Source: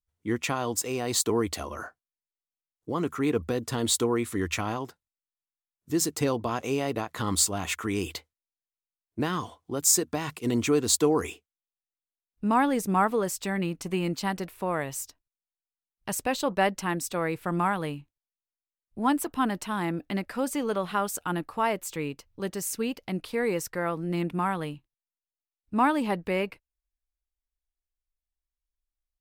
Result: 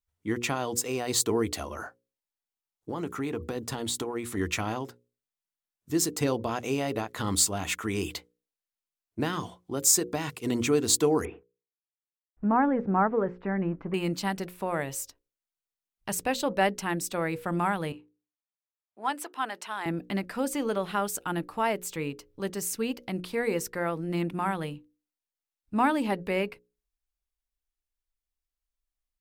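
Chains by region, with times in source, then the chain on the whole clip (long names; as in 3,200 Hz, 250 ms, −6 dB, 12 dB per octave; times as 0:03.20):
0:01.75–0:04.37: parametric band 840 Hz +5.5 dB 0.22 octaves + downward compressor, threshold −27 dBFS
0:11.25–0:13.94: mu-law and A-law mismatch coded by mu + low-pass filter 1,700 Hz 24 dB per octave
0:17.92–0:19.86: high-pass filter 650 Hz + high-shelf EQ 10,000 Hz −11 dB + one half of a high-frequency compander decoder only
whole clip: mains-hum notches 60/120/180/240/300/360/420/480/540 Hz; dynamic equaliser 1,100 Hz, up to −4 dB, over −43 dBFS, Q 3.9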